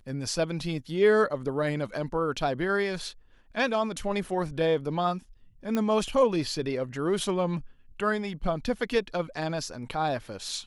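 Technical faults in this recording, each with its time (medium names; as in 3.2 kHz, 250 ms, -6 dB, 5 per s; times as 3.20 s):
5.75 s: pop -15 dBFS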